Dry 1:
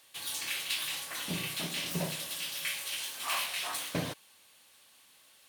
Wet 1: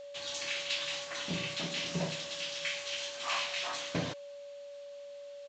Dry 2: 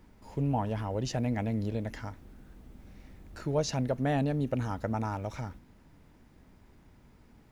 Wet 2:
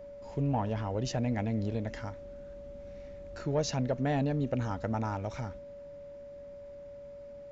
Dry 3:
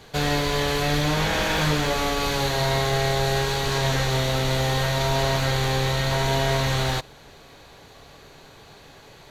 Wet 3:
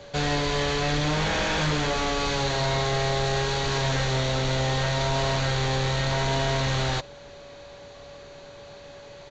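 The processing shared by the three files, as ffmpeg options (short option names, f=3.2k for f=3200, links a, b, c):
-af "aresample=16000,asoftclip=type=tanh:threshold=-18.5dB,aresample=44100,aeval=exprs='val(0)+0.00631*sin(2*PI*570*n/s)':c=same"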